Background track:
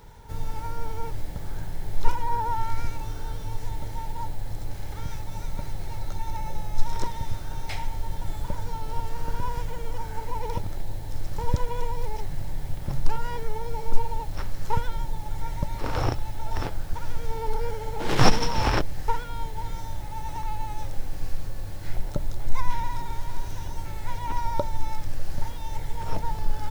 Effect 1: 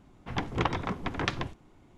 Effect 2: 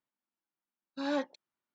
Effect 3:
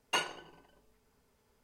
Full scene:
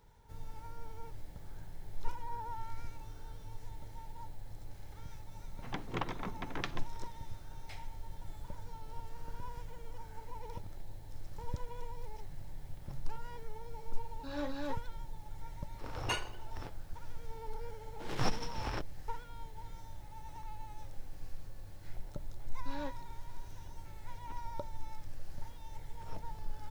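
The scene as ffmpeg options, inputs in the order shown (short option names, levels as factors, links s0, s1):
-filter_complex "[2:a]asplit=2[s0][s1];[0:a]volume=0.178[s2];[1:a]highpass=f=100:w=0.5412,highpass=f=100:w=1.3066[s3];[s0]aecho=1:1:37.9|250.7:0.501|1[s4];[s3]atrim=end=1.97,asetpts=PTS-STARTPTS,volume=0.355,afade=t=in:d=0.004:c=hsin,afade=t=out:st=1.966:d=0.004:c=hsin,adelay=5360[s5];[s4]atrim=end=1.74,asetpts=PTS-STARTPTS,volume=0.355,afade=t=in:d=0.004:c=hsin,afade=t=out:st=1.736:d=0.004:c=hsin,adelay=13260[s6];[3:a]atrim=end=1.63,asetpts=PTS-STARTPTS,volume=0.631,afade=t=in:d=0.004:c=hsin,afade=t=out:st=1.626:d=0.004:c=hsin,adelay=15960[s7];[s1]atrim=end=1.74,asetpts=PTS-STARTPTS,volume=0.282,afade=t=in:d=0.004:c=hsin,afade=t=out:st=1.736:d=0.004:c=hsin,adelay=21680[s8];[s2][s5][s6][s7][s8]amix=inputs=5:normalize=0"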